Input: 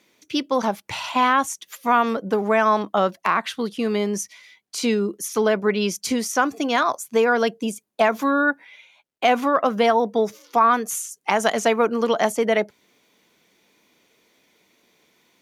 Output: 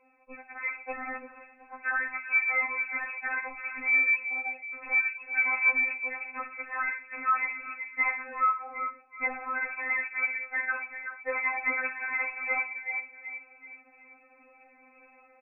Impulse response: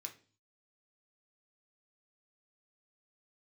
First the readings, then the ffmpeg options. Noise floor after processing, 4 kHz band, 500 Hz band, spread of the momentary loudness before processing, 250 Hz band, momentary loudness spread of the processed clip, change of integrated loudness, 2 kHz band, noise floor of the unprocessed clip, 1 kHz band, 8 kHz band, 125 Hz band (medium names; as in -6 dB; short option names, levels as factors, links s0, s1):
-59 dBFS, under -40 dB, -23.5 dB, 9 LU, -27.0 dB, 13 LU, -7.0 dB, +0.5 dB, -65 dBFS, -13.0 dB, under -40 dB, no reading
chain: -filter_complex "[0:a]highpass=110,bandreject=f=860:w=5.6,asplit=2[s0][s1];[s1]adelay=378,lowpass=f=920:p=1,volume=0.133,asplit=2[s2][s3];[s3]adelay=378,lowpass=f=920:p=1,volume=0.46,asplit=2[s4][s5];[s5]adelay=378,lowpass=f=920:p=1,volume=0.46,asplit=2[s6][s7];[s7]adelay=378,lowpass=f=920:p=1,volume=0.46[s8];[s0][s2][s4][s6][s8]amix=inputs=5:normalize=0,afreqshift=-45,asplit=2[s9][s10];[1:a]atrim=start_sample=2205,lowpass=5400,adelay=23[s11];[s10][s11]afir=irnorm=-1:irlink=0,volume=0.794[s12];[s9][s12]amix=inputs=2:normalize=0,dynaudnorm=f=420:g=9:m=2.82,asoftclip=type=tanh:threshold=0.119,equalizer=f=1800:t=o:w=1.1:g=4,acompressor=threshold=0.0447:ratio=6,lowshelf=f=180:g=4.5,lowpass=f=2300:t=q:w=0.5098,lowpass=f=2300:t=q:w=0.6013,lowpass=f=2300:t=q:w=0.9,lowpass=f=2300:t=q:w=2.563,afreqshift=-2700,afftfilt=real='re*3.46*eq(mod(b,12),0)':imag='im*3.46*eq(mod(b,12),0)':win_size=2048:overlap=0.75"